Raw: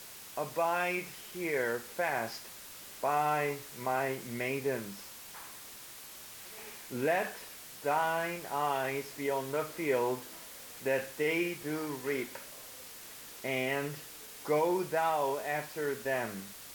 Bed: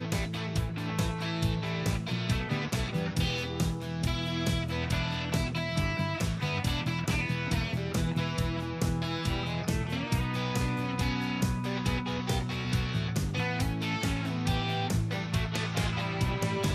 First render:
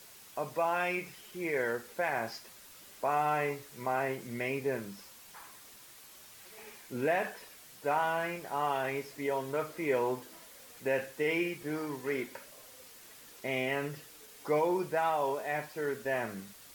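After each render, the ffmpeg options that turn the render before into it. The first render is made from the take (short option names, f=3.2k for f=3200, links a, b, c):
-af "afftdn=nr=6:nf=-49"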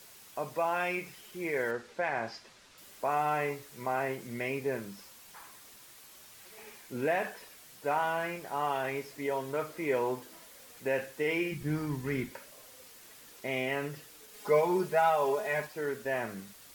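-filter_complex "[0:a]asettb=1/sr,asplit=3[a][b][c];[a]atrim=end=1.714[d];[b]atrim=start=1.71:end=2.78,asetpts=PTS-STARTPTS,afade=t=in:d=0.004:c=qsin,afade=t=out:st=1.066:d=0.004:c=qsin,lowpass=5.7k[e];[c]atrim=start=2.776[f];[d][e]acrossfade=d=0.004:c1=hsin:c2=qsin[g];[g][f]acrossfade=d=0.004:c1=qsin:c2=hsin,asplit=3[h][i][j];[h]afade=t=out:st=11.51:d=0.02[k];[i]asubboost=boost=7.5:cutoff=170,afade=t=in:st=11.51:d=0.02,afade=t=out:st=12.3:d=0.02[l];[j]afade=t=in:st=12.3:d=0.02[m];[k][l][m]amix=inputs=3:normalize=0,asettb=1/sr,asplit=3[n][o][p];[n]atrim=end=14.334[q];[o]atrim=start=14.33:end=15.67,asetpts=PTS-STARTPTS,afade=t=in:d=0.004:c=qsin,afade=t=out:st=1.336:d=0.004:c=qsin,aecho=1:1:4.8:0.98,atrim=end_sample=59094[r];[p]atrim=start=15.666[s];[q][r]acrossfade=d=0.004:c1=hsin:c2=qsin[t];[t][s]acrossfade=d=0.004:c1=qsin:c2=hsin"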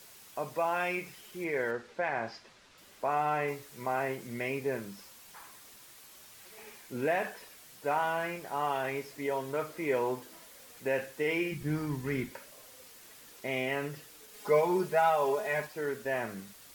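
-filter_complex "[0:a]asettb=1/sr,asplit=3[a][b][c];[a]atrim=end=1.444[d];[b]atrim=start=1.44:end=3.48,asetpts=PTS-STARTPTS,afade=t=in:d=0.004:c=qsin,afade=t=out:st=2.036:d=0.004:c=qsin,highshelf=f=6.4k:g=-7.5[e];[c]atrim=start=3.476[f];[d][e]acrossfade=d=0.004:c1=hsin:c2=qsin[g];[g][f]acrossfade=d=0.004:c1=qsin:c2=hsin"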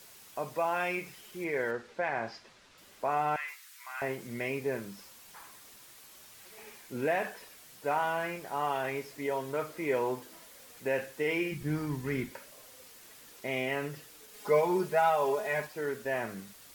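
-filter_complex "[0:a]asettb=1/sr,asplit=3[a][b][c];[a]atrim=end=3.364[d];[b]atrim=start=3.36:end=4.02,asetpts=PTS-STARTPTS,afade=t=in:d=0.004:c=qsin,afade=t=out:st=0.656:d=0.004:c=qsin,highpass=f=1.3k:w=0.5412,highpass=f=1.3k:w=1.3066[e];[c]atrim=start=4.016[f];[d][e]acrossfade=d=0.004:c1=hsin:c2=qsin[g];[g][f]acrossfade=d=0.004:c1=qsin:c2=hsin"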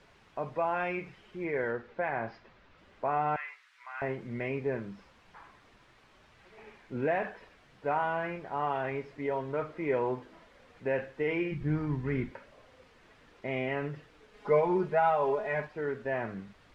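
-af "lowpass=2.3k,lowshelf=f=99:g=11"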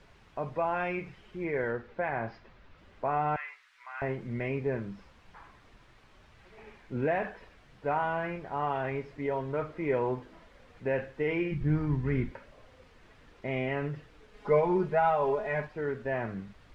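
-af "lowshelf=f=110:g=10"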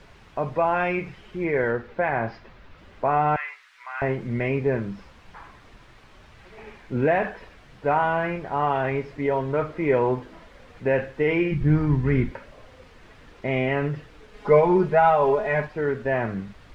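-af "volume=8dB"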